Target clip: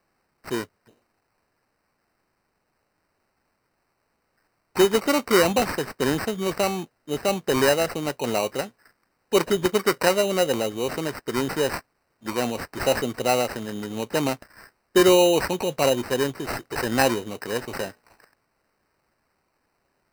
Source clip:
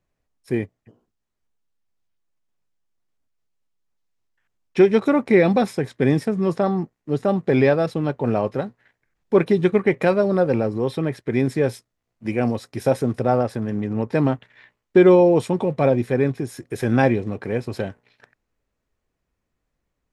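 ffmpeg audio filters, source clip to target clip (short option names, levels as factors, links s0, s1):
-af "aemphasis=mode=production:type=riaa,acrusher=samples=13:mix=1:aa=0.000001"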